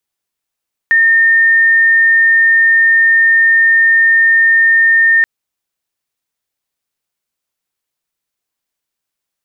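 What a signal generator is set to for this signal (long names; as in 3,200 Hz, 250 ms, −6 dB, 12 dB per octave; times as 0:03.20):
tone sine 1,820 Hz −6 dBFS 4.33 s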